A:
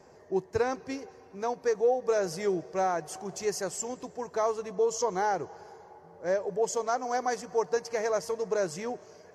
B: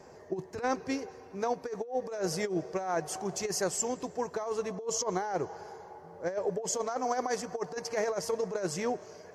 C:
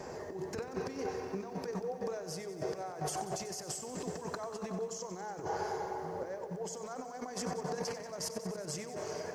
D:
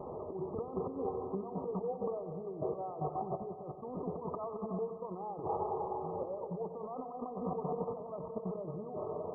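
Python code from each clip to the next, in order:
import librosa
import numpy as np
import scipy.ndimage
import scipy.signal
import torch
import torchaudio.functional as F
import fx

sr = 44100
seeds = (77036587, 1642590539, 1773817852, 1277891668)

y1 = fx.over_compress(x, sr, threshold_db=-30.0, ratio=-0.5)
y2 = fx.over_compress(y1, sr, threshold_db=-42.0, ratio=-1.0)
y2 = fx.echo_crushed(y2, sr, ms=93, feedback_pct=80, bits=11, wet_db=-12.5)
y2 = F.gain(torch.from_numpy(y2), 1.0).numpy()
y3 = fx.brickwall_lowpass(y2, sr, high_hz=1300.0)
y3 = F.gain(torch.from_numpy(y3), 1.0).numpy()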